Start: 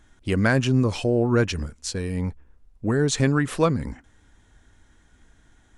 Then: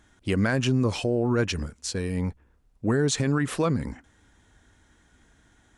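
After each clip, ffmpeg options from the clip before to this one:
-af "highpass=f=70:p=1,alimiter=limit=0.178:level=0:latency=1:release=57"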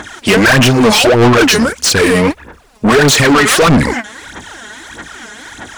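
-filter_complex "[0:a]aphaser=in_gain=1:out_gain=1:delay=4.8:decay=0.74:speed=1.6:type=sinusoidal,asplit=2[s0][s1];[s1]highpass=f=720:p=1,volume=50.1,asoftclip=type=tanh:threshold=0.631[s2];[s0][s2]amix=inputs=2:normalize=0,lowpass=f=7000:p=1,volume=0.501,volume=1.41"

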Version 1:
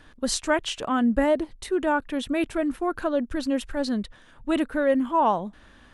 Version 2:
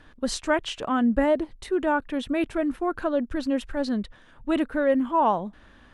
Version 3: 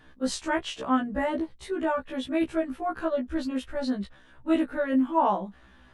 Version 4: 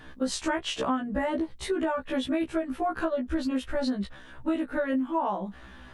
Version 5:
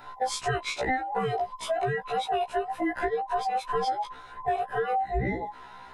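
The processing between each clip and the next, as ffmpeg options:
-af "highshelf=f=5300:g=-8.5"
-af "afftfilt=real='re*1.73*eq(mod(b,3),0)':imag='im*1.73*eq(mod(b,3),0)':win_size=2048:overlap=0.75"
-af "acompressor=threshold=0.0251:ratio=10,volume=2.37"
-af "afftfilt=real='real(if(between(b,1,1008),(2*floor((b-1)/48)+1)*48-b,b),0)':imag='imag(if(between(b,1,1008),(2*floor((b-1)/48)+1)*48-b,b),0)*if(between(b,1,1008),-1,1)':win_size=2048:overlap=0.75"

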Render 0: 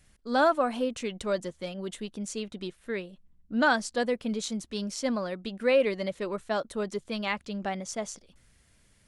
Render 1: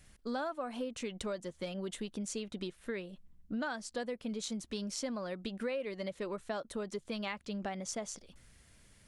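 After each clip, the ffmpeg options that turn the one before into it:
-af "acompressor=threshold=0.0141:ratio=6,volume=1.19"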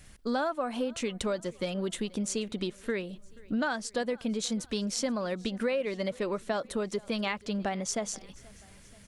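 -af "aecho=1:1:481|962|1443|1924:0.0631|0.0347|0.0191|0.0105,volume=2.24"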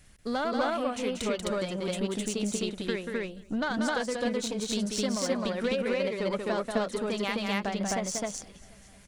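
-af "aeval=exprs='0.168*(cos(1*acos(clip(val(0)/0.168,-1,1)))-cos(1*PI/2))+0.00841*(cos(6*acos(clip(val(0)/0.168,-1,1)))-cos(6*PI/2))+0.00841*(cos(7*acos(clip(val(0)/0.168,-1,1)))-cos(7*PI/2))+0.00531*(cos(8*acos(clip(val(0)/0.168,-1,1)))-cos(8*PI/2))':c=same,aecho=1:1:186.6|259.5:0.562|1"

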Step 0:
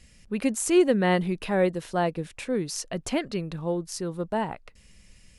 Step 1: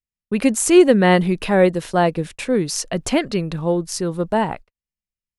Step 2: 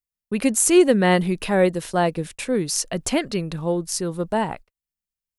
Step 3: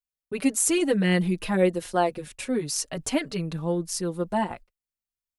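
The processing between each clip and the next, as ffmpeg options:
-af "agate=range=0.00316:threshold=0.00891:ratio=16:detection=peak,volume=2.66"
-af "crystalizer=i=1:c=0,volume=0.668"
-filter_complex "[0:a]asplit=2[s0][s1];[s1]adelay=4.9,afreqshift=0.38[s2];[s0][s2]amix=inputs=2:normalize=1,volume=0.841"

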